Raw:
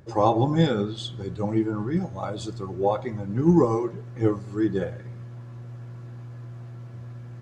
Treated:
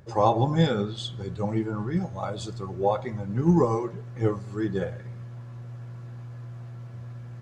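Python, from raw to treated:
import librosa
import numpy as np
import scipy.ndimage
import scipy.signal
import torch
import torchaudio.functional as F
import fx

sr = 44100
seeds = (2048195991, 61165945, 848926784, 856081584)

y = fx.peak_eq(x, sr, hz=310.0, db=-6.0, octaves=0.56)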